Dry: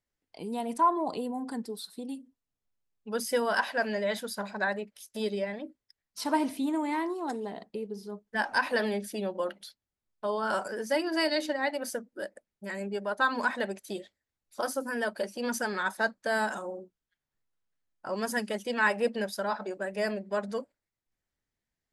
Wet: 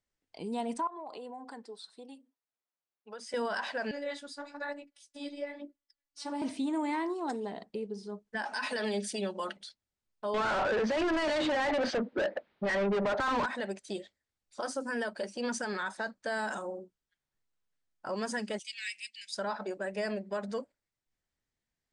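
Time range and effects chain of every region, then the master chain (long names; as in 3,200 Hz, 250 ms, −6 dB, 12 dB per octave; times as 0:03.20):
0:00.87–0:03.34: high-pass filter 730 Hz + spectral tilt −3 dB per octave + downward compressor 8 to 1, threshold −38 dBFS
0:03.91–0:06.42: phases set to zero 286 Hz + flanger 1.1 Hz, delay 1.6 ms, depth 8.8 ms, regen −54%
0:08.45–0:09.57: high-pass filter 160 Hz 6 dB per octave + high-shelf EQ 2,800 Hz +9 dB + comb filter 4.7 ms, depth 54%
0:10.34–0:13.46: Chebyshev low-pass filter 3,800 Hz, order 3 + mid-hump overdrive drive 34 dB, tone 1,500 Hz, clips at −15 dBFS
0:18.59–0:19.35: elliptic high-pass filter 2,200 Hz, stop band 50 dB + high-shelf EQ 5,700 Hz +5 dB
whole clip: elliptic low-pass filter 9,000 Hz, stop band 40 dB; brickwall limiter −25.5 dBFS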